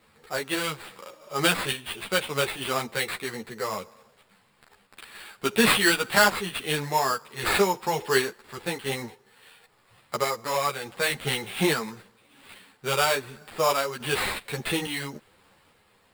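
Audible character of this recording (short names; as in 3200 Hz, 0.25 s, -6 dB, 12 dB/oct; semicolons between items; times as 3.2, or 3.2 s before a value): random-step tremolo; aliases and images of a low sample rate 6100 Hz, jitter 0%; a shimmering, thickened sound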